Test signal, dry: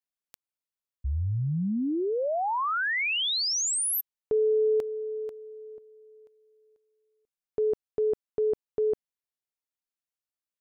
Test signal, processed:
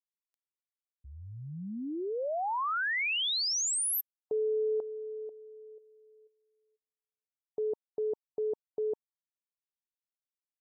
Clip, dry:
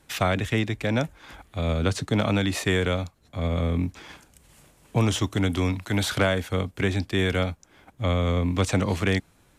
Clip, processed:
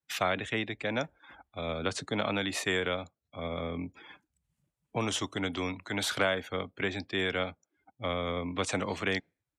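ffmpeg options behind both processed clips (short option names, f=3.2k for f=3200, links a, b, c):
-af "afftdn=nr=29:nf=-44,highpass=f=460:p=1,volume=-3dB"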